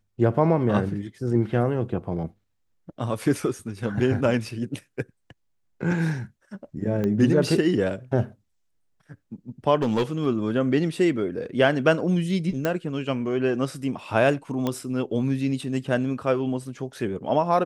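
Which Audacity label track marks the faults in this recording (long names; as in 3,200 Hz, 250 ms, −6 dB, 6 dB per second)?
7.040000	7.040000	click −16 dBFS
9.820000	10.270000	clipping −18 dBFS
12.650000	12.650000	click −11 dBFS
14.670000	14.670000	click −13 dBFS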